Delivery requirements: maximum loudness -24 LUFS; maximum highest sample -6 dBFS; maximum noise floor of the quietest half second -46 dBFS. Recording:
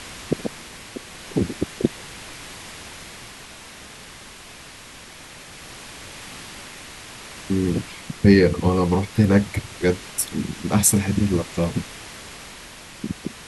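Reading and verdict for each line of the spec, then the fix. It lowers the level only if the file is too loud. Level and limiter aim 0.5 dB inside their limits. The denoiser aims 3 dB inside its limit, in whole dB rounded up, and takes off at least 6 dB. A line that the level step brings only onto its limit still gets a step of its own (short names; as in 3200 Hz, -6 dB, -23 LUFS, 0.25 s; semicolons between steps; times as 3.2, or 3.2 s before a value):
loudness -21.5 LUFS: fail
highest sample -3.0 dBFS: fail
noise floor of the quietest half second -42 dBFS: fail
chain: denoiser 6 dB, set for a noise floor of -42 dBFS; gain -3 dB; limiter -6.5 dBFS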